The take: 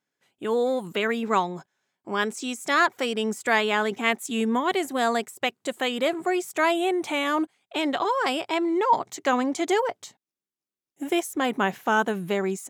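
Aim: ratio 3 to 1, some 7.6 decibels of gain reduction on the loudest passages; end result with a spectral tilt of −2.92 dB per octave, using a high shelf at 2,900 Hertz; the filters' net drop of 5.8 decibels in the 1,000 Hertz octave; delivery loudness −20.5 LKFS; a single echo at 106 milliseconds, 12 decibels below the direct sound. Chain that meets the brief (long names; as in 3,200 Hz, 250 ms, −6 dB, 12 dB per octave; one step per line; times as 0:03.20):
parametric band 1,000 Hz −8 dB
high-shelf EQ 2,900 Hz +4 dB
downward compressor 3 to 1, threshold −30 dBFS
single-tap delay 106 ms −12 dB
level +12 dB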